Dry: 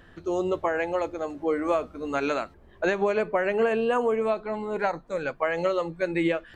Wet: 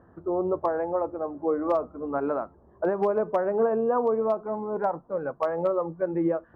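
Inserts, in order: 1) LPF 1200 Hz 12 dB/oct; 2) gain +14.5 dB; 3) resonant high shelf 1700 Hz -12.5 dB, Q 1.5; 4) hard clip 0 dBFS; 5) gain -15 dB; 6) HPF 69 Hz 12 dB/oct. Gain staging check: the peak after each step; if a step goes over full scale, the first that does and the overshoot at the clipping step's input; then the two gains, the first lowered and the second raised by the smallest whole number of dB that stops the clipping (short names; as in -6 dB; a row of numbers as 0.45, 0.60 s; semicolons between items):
-12.0, +2.5, +4.0, 0.0, -15.0, -14.0 dBFS; step 2, 4.0 dB; step 2 +10.5 dB, step 5 -11 dB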